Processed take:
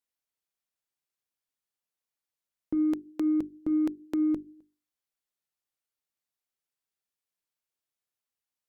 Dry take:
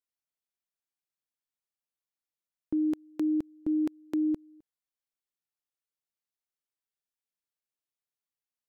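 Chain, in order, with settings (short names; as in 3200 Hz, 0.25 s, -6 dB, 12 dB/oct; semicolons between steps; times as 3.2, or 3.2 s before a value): added harmonics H 4 -34 dB, 7 -42 dB, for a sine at -23 dBFS; notches 50/100/150/200/250/300/350/400 Hz; gain +2.5 dB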